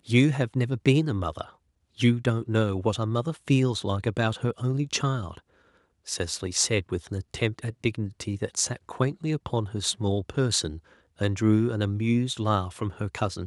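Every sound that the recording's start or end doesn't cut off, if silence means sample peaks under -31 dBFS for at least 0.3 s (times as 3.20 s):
2.00–5.37 s
6.08–10.75 s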